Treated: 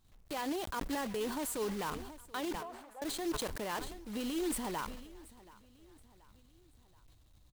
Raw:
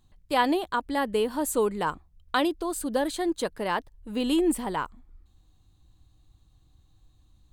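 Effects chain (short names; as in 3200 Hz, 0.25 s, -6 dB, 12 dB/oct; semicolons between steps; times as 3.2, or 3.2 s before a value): block floating point 3-bit; limiter -23.5 dBFS, peak gain reduction 11.5 dB; 2.55–3.02 ladder band-pass 890 Hz, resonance 50%; feedback echo 0.729 s, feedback 48%, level -21 dB; sustainer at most 52 dB/s; gain -6 dB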